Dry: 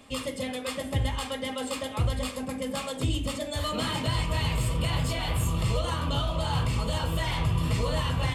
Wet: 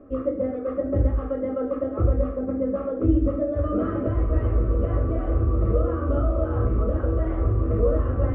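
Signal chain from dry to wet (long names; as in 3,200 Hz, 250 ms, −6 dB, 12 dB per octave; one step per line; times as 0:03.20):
loose part that buzzes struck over −33 dBFS, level −35 dBFS
Chebyshev low-pass filter 1,300 Hz, order 4
parametric band 330 Hz +6 dB 0.26 octaves
phaser with its sweep stopped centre 380 Hz, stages 4
on a send: convolution reverb RT60 0.45 s, pre-delay 5 ms, DRR 4 dB
on the sum: level +9 dB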